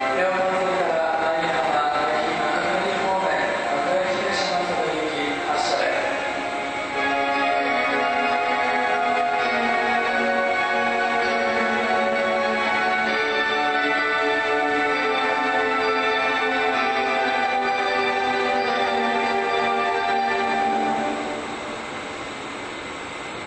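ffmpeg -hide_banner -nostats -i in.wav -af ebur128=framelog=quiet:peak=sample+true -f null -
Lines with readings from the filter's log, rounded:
Integrated loudness:
  I:         -21.7 LUFS
  Threshold: -31.7 LUFS
Loudness range:
  LRA:         2.4 LU
  Threshold: -41.5 LUFS
  LRA low:   -23.0 LUFS
  LRA high:  -20.5 LUFS
Sample peak:
  Peak:       -8.3 dBFS
True peak:
  Peak:       -8.3 dBFS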